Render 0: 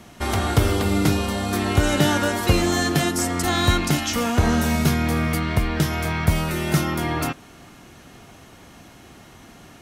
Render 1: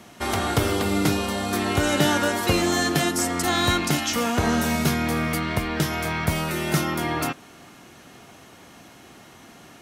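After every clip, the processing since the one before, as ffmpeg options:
ffmpeg -i in.wav -af "highpass=frequency=180:poles=1" out.wav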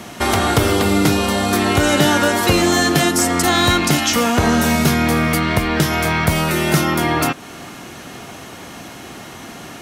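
ffmpeg -i in.wav -filter_complex "[0:a]asplit=2[link_01][link_02];[link_02]volume=16dB,asoftclip=hard,volume=-16dB,volume=-4dB[link_03];[link_01][link_03]amix=inputs=2:normalize=0,acompressor=threshold=-30dB:ratio=1.5,volume=8.5dB" out.wav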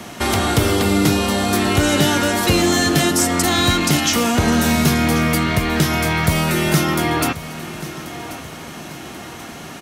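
ffmpeg -i in.wav -filter_complex "[0:a]acrossover=split=380|2400[link_01][link_02][link_03];[link_02]asoftclip=type=tanh:threshold=-18.5dB[link_04];[link_01][link_04][link_03]amix=inputs=3:normalize=0,aecho=1:1:1085|2170|3255|4340:0.168|0.0739|0.0325|0.0143" out.wav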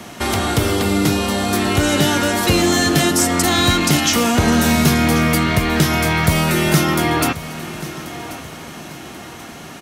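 ffmpeg -i in.wav -af "dynaudnorm=framelen=430:gausssize=9:maxgain=11.5dB,volume=-1dB" out.wav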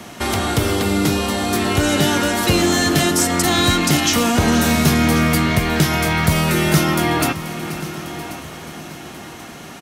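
ffmpeg -i in.wav -af "aecho=1:1:482|964|1446|1928|2410:0.188|0.0961|0.049|0.025|0.0127,volume=-1dB" out.wav

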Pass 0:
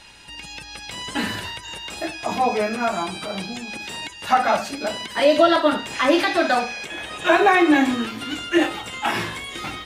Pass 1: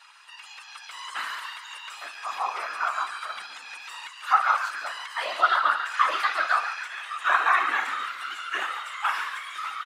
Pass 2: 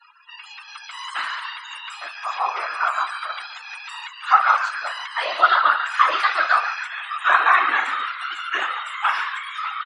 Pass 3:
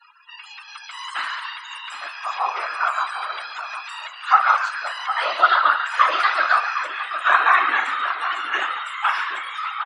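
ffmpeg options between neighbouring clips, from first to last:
ffmpeg -i in.wav -filter_complex "[0:a]afftfilt=real='hypot(re,im)*cos(2*PI*random(0))':imag='hypot(re,im)*sin(2*PI*random(1))':win_size=512:overlap=0.75,highpass=frequency=1200:width_type=q:width=5.5,asplit=7[link_01][link_02][link_03][link_04][link_05][link_06][link_07];[link_02]adelay=141,afreqshift=130,volume=-10.5dB[link_08];[link_03]adelay=282,afreqshift=260,volume=-16dB[link_09];[link_04]adelay=423,afreqshift=390,volume=-21.5dB[link_10];[link_05]adelay=564,afreqshift=520,volume=-27dB[link_11];[link_06]adelay=705,afreqshift=650,volume=-32.6dB[link_12];[link_07]adelay=846,afreqshift=780,volume=-38.1dB[link_13];[link_01][link_08][link_09][link_10][link_11][link_12][link_13]amix=inputs=7:normalize=0,volume=-3.5dB" out.wav
ffmpeg -i in.wav -af "afftdn=noise_reduction=33:noise_floor=-48,volume=5.5dB" out.wav
ffmpeg -i in.wav -filter_complex "[0:a]asplit=2[link_01][link_02];[link_02]adelay=758,volume=-9dB,highshelf=frequency=4000:gain=-17.1[link_03];[link_01][link_03]amix=inputs=2:normalize=0" out.wav

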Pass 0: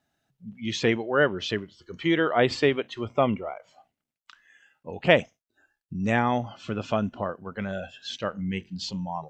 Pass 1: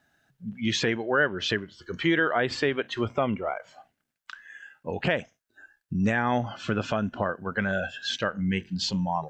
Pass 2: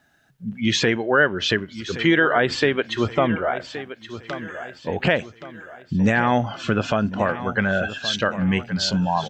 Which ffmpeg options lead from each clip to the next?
ffmpeg -i in.wav -filter_complex "[0:a]equalizer=frequency=1600:width=4.1:gain=9.5,asplit=2[link_01][link_02];[link_02]acompressor=threshold=-28dB:ratio=6,volume=-2dB[link_03];[link_01][link_03]amix=inputs=2:normalize=0,alimiter=limit=-12.5dB:level=0:latency=1:release=289" out.wav
ffmpeg -i in.wav -af "aecho=1:1:1122|2244|3366|4488:0.224|0.0963|0.0414|0.0178,volume=6dB" out.wav

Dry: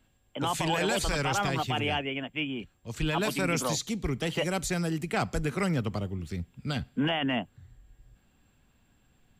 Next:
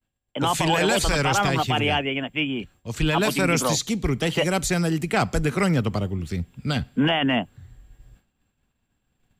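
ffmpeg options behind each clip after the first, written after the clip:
ffmpeg -i in.wav -af "agate=range=-33dB:threshold=-54dB:ratio=3:detection=peak,volume=7dB" out.wav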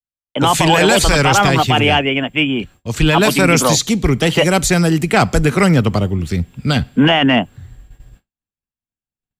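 ffmpeg -i in.wav -af "agate=range=-33dB:threshold=-45dB:ratio=3:detection=peak,acontrast=34,volume=4dB" out.wav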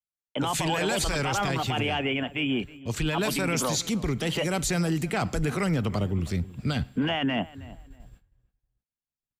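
ffmpeg -i in.wav -filter_complex "[0:a]alimiter=limit=-11dB:level=0:latency=1:release=40,asplit=2[link_01][link_02];[link_02]adelay=318,lowpass=frequency=2100:poles=1,volume=-18dB,asplit=2[link_03][link_04];[link_04]adelay=318,lowpass=frequency=2100:poles=1,volume=0.28[link_05];[link_01][link_03][link_05]amix=inputs=3:normalize=0,volume=-8dB" out.wav

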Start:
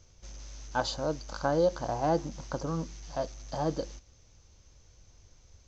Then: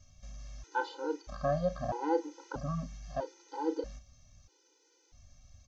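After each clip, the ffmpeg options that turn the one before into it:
ffmpeg -i in.wav -filter_complex "[0:a]asplit=2[link_01][link_02];[link_02]adelay=34,volume=-11dB[link_03];[link_01][link_03]amix=inputs=2:normalize=0,acrossover=split=2800[link_04][link_05];[link_05]acompressor=threshold=-55dB:ratio=4:attack=1:release=60[link_06];[link_04][link_06]amix=inputs=2:normalize=0,afftfilt=real='re*gt(sin(2*PI*0.78*pts/sr)*(1-2*mod(floor(b*sr/1024/260),2)),0)':imag='im*gt(sin(2*PI*0.78*pts/sr)*(1-2*mod(floor(b*sr/1024/260),2)),0)':win_size=1024:overlap=0.75" out.wav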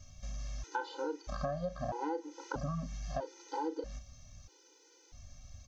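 ffmpeg -i in.wav -af "acompressor=threshold=-39dB:ratio=8,volume=5.5dB" out.wav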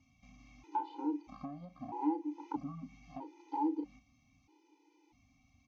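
ffmpeg -i in.wav -filter_complex "[0:a]asplit=3[link_01][link_02][link_03];[link_01]bandpass=frequency=300:width_type=q:width=8,volume=0dB[link_04];[link_02]bandpass=frequency=870:width_type=q:width=8,volume=-6dB[link_05];[link_03]bandpass=frequency=2240:width_type=q:width=8,volume=-9dB[link_06];[link_04][link_05][link_06]amix=inputs=3:normalize=0,volume=9.5dB" out.wav

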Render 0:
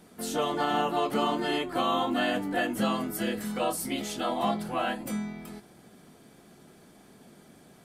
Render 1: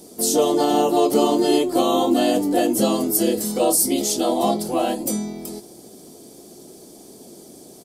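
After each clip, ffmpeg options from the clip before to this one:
ffmpeg -i in.wav -af "firequalizer=gain_entry='entry(180,0);entry(330,11);entry(1500,-10);entry(5000,13)':delay=0.05:min_phase=1,volume=4dB" out.wav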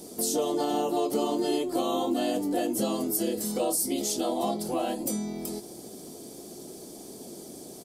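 ffmpeg -i in.wav -af "acompressor=threshold=-32dB:ratio=2" out.wav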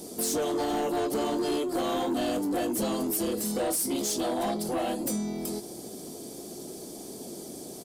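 ffmpeg -i in.wav -af "asoftclip=type=tanh:threshold=-26dB,volume=2.5dB" out.wav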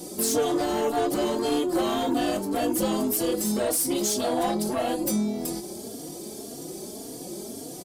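ffmpeg -i in.wav -filter_complex "[0:a]asplit=2[link_01][link_02];[link_02]adelay=3.6,afreqshift=1.8[link_03];[link_01][link_03]amix=inputs=2:normalize=1,volume=6.5dB" out.wav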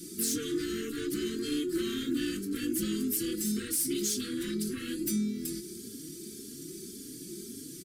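ffmpeg -i in.wav -af "asuperstop=centerf=740:order=8:qfactor=0.7,volume=-4.5dB" out.wav

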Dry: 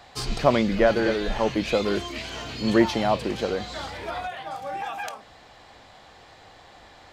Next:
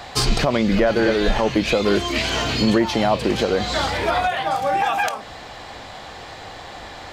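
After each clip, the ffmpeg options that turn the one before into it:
ffmpeg -i in.wav -filter_complex "[0:a]asplit=2[link_01][link_02];[link_02]acompressor=threshold=-30dB:ratio=6,volume=3dB[link_03];[link_01][link_03]amix=inputs=2:normalize=0,alimiter=limit=-13dB:level=0:latency=1:release=221,volume=5.5dB" out.wav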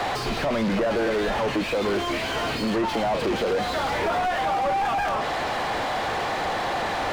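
ffmpeg -i in.wav -filter_complex "[0:a]acompressor=threshold=-28dB:ratio=3,asplit=2[link_01][link_02];[link_02]highpass=frequency=720:poles=1,volume=35dB,asoftclip=type=tanh:threshold=-15.5dB[link_03];[link_01][link_03]amix=inputs=2:normalize=0,lowpass=frequency=1000:poles=1,volume=-6dB" out.wav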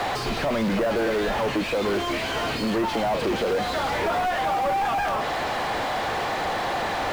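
ffmpeg -i in.wav -af "acrusher=bits=7:mode=log:mix=0:aa=0.000001" out.wav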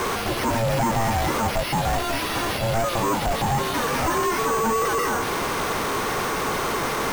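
ffmpeg -i in.wav -af "acrusher=samples=6:mix=1:aa=0.000001,aeval=exprs='val(0)*sin(2*PI*340*n/s)':channel_layout=same,volume=4.5dB" out.wav

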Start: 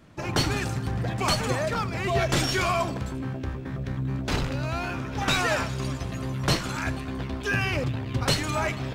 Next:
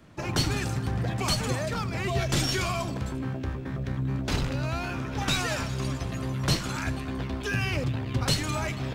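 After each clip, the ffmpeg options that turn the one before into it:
ffmpeg -i in.wav -filter_complex "[0:a]acrossover=split=290|3000[link_01][link_02][link_03];[link_02]acompressor=threshold=-33dB:ratio=2.5[link_04];[link_01][link_04][link_03]amix=inputs=3:normalize=0" out.wav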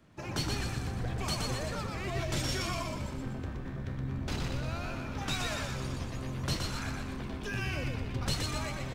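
ffmpeg -i in.wav -filter_complex "[0:a]asplit=8[link_01][link_02][link_03][link_04][link_05][link_06][link_07][link_08];[link_02]adelay=121,afreqshift=-45,volume=-3.5dB[link_09];[link_03]adelay=242,afreqshift=-90,volume=-9.3dB[link_10];[link_04]adelay=363,afreqshift=-135,volume=-15.2dB[link_11];[link_05]adelay=484,afreqshift=-180,volume=-21dB[link_12];[link_06]adelay=605,afreqshift=-225,volume=-26.9dB[link_13];[link_07]adelay=726,afreqshift=-270,volume=-32.7dB[link_14];[link_08]adelay=847,afreqshift=-315,volume=-38.6dB[link_15];[link_01][link_09][link_10][link_11][link_12][link_13][link_14][link_15]amix=inputs=8:normalize=0,volume=-8dB" out.wav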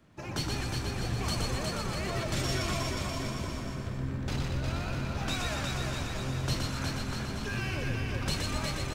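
ffmpeg -i in.wav -af "aecho=1:1:360|648|878.4|1063|1210:0.631|0.398|0.251|0.158|0.1" out.wav

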